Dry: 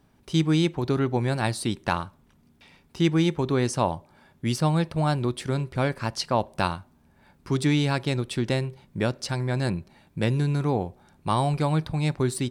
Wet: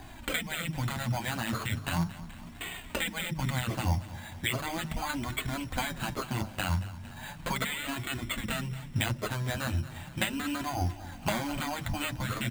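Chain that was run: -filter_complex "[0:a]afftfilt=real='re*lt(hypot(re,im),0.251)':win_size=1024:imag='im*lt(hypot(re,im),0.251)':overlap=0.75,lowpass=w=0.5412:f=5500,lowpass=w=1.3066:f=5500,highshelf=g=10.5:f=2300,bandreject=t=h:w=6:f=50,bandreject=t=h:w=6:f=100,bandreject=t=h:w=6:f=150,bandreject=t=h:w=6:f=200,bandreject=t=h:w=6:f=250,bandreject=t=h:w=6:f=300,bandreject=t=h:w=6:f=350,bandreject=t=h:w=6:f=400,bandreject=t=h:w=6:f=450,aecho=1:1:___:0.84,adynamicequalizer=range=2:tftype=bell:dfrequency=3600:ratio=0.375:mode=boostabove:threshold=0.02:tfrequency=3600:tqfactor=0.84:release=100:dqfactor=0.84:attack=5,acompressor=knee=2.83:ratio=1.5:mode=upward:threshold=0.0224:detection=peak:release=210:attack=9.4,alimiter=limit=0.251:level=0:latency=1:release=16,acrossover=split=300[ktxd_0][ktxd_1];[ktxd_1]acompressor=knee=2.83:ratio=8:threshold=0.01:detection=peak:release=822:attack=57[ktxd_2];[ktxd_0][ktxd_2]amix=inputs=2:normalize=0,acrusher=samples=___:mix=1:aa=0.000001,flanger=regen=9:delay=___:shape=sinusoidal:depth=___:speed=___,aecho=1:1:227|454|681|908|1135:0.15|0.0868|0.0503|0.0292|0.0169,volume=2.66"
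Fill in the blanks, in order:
1.2, 8, 2.7, 7.1, 0.37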